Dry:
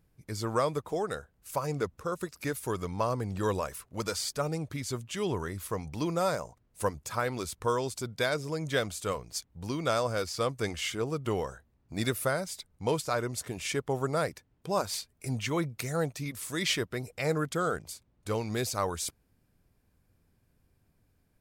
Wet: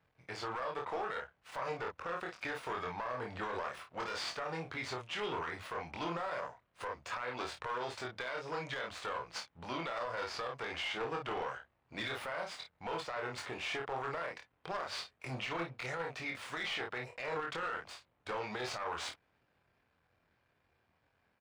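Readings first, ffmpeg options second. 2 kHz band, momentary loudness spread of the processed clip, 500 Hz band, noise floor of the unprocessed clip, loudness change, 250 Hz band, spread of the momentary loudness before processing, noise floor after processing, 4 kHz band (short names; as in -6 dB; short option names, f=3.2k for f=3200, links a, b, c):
-2.0 dB, 6 LU, -9.5 dB, -71 dBFS, -7.5 dB, -12.5 dB, 7 LU, -77 dBFS, -5.5 dB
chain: -filter_complex "[0:a]aeval=exprs='if(lt(val(0),0),0.251*val(0),val(0))':c=same,highpass=61,acrossover=split=560 3800:gain=0.178 1 0.0891[a][b][c];[a][b][c]amix=inputs=3:normalize=0,aecho=1:1:24|53:0.708|0.355,acompressor=threshold=-36dB:ratio=6,aeval=exprs='clip(val(0),-1,0.0168)':c=same,equalizer=f=14k:t=o:w=0.56:g=-15,alimiter=level_in=12.5dB:limit=-24dB:level=0:latency=1:release=26,volume=-12.5dB,volume=7dB"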